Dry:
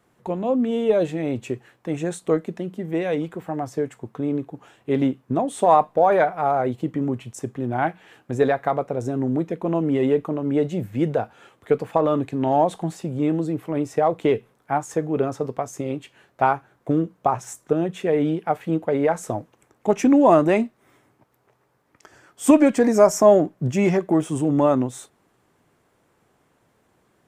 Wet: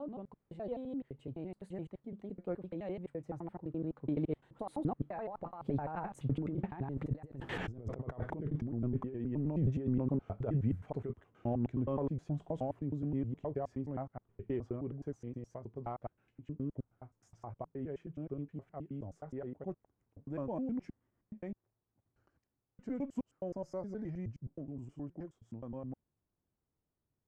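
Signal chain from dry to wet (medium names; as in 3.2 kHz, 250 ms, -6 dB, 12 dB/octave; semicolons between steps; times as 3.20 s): slices played last to first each 95 ms, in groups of 6; Doppler pass-by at 7.59 s, 36 m/s, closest 4.4 m; compressor with a negative ratio -49 dBFS, ratio -1; RIAA curve playback; trim +6 dB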